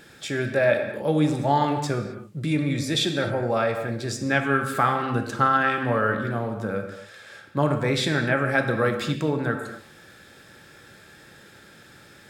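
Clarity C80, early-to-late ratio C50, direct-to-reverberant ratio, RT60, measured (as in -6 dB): 8.0 dB, 7.0 dB, 4.5 dB, no single decay rate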